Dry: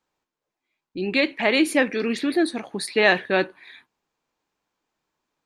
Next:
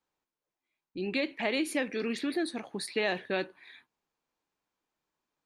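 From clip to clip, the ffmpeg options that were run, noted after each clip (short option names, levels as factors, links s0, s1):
-filter_complex "[0:a]acrossover=split=1000|2100[s0][s1][s2];[s0]acompressor=threshold=0.0891:ratio=4[s3];[s1]acompressor=threshold=0.0158:ratio=4[s4];[s2]acompressor=threshold=0.0501:ratio=4[s5];[s3][s4][s5]amix=inputs=3:normalize=0,volume=0.447"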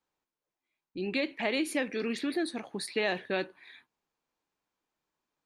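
-af anull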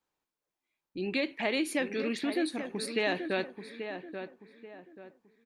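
-filter_complex "[0:a]asplit=2[s0][s1];[s1]adelay=834,lowpass=f=1800:p=1,volume=0.398,asplit=2[s2][s3];[s3]adelay=834,lowpass=f=1800:p=1,volume=0.35,asplit=2[s4][s5];[s5]adelay=834,lowpass=f=1800:p=1,volume=0.35,asplit=2[s6][s7];[s7]adelay=834,lowpass=f=1800:p=1,volume=0.35[s8];[s0][s2][s4][s6][s8]amix=inputs=5:normalize=0"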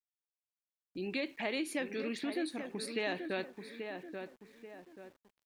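-filter_complex "[0:a]asplit=2[s0][s1];[s1]acompressor=threshold=0.0126:ratio=6,volume=0.794[s2];[s0][s2]amix=inputs=2:normalize=0,aeval=exprs='val(0)*gte(abs(val(0)),0.00188)':c=same,volume=0.422"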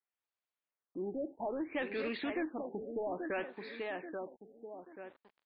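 -filter_complex "[0:a]asplit=2[s0][s1];[s1]highpass=f=720:p=1,volume=7.08,asoftclip=type=tanh:threshold=0.0794[s2];[s0][s2]amix=inputs=2:normalize=0,lowpass=f=1800:p=1,volume=0.501,afftfilt=real='re*lt(b*sr/1024,810*pow(5200/810,0.5+0.5*sin(2*PI*0.61*pts/sr)))':imag='im*lt(b*sr/1024,810*pow(5200/810,0.5+0.5*sin(2*PI*0.61*pts/sr)))':win_size=1024:overlap=0.75,volume=0.708"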